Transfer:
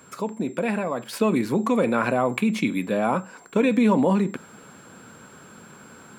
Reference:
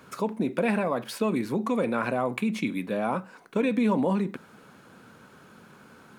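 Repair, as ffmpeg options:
ffmpeg -i in.wav -af "bandreject=frequency=7500:width=30,asetnsamples=nb_out_samples=441:pad=0,asendcmd='1.13 volume volume -5dB',volume=0dB" out.wav

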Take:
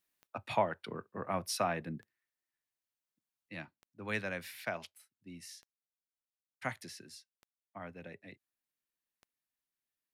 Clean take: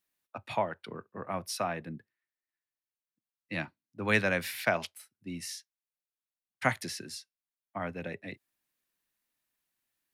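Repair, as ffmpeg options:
ffmpeg -i in.wav -af "adeclick=threshold=4,asetnsamples=nb_out_samples=441:pad=0,asendcmd='3.49 volume volume 10dB',volume=0dB" out.wav

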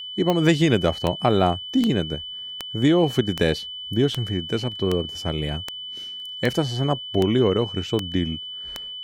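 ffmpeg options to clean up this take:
ffmpeg -i in.wav -af "adeclick=threshold=4,bandreject=frequency=3000:width=30" out.wav

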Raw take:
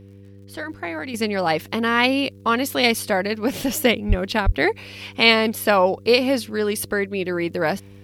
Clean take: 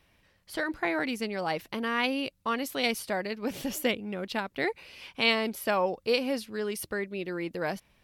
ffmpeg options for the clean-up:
ffmpeg -i in.wav -filter_complex "[0:a]adeclick=threshold=4,bandreject=frequency=98.8:width_type=h:width=4,bandreject=frequency=197.6:width_type=h:width=4,bandreject=frequency=296.4:width_type=h:width=4,bandreject=frequency=395.2:width_type=h:width=4,bandreject=frequency=494:width_type=h:width=4,asplit=3[link_01][link_02][link_03];[link_01]afade=type=out:start_time=4.08:duration=0.02[link_04];[link_02]highpass=frequency=140:width=0.5412,highpass=frequency=140:width=1.3066,afade=type=in:start_time=4.08:duration=0.02,afade=type=out:start_time=4.2:duration=0.02[link_05];[link_03]afade=type=in:start_time=4.2:duration=0.02[link_06];[link_04][link_05][link_06]amix=inputs=3:normalize=0,asplit=3[link_07][link_08][link_09];[link_07]afade=type=out:start_time=4.45:duration=0.02[link_10];[link_08]highpass=frequency=140:width=0.5412,highpass=frequency=140:width=1.3066,afade=type=in:start_time=4.45:duration=0.02,afade=type=out:start_time=4.57:duration=0.02[link_11];[link_09]afade=type=in:start_time=4.57:duration=0.02[link_12];[link_10][link_11][link_12]amix=inputs=3:normalize=0,asetnsamples=nb_out_samples=441:pad=0,asendcmd='1.14 volume volume -10dB',volume=0dB" out.wav

